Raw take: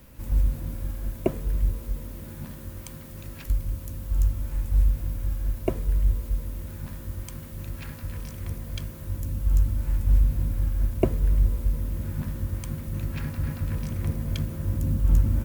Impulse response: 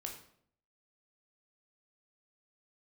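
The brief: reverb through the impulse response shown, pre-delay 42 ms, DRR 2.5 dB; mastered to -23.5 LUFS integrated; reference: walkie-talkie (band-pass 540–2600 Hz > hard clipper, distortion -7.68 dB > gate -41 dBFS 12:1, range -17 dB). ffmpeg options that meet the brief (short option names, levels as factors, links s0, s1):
-filter_complex "[0:a]asplit=2[s0][s1];[1:a]atrim=start_sample=2205,adelay=42[s2];[s1][s2]afir=irnorm=-1:irlink=0,volume=0.944[s3];[s0][s3]amix=inputs=2:normalize=0,highpass=540,lowpass=2600,asoftclip=type=hard:threshold=0.0473,agate=range=0.141:threshold=0.00891:ratio=12,volume=10"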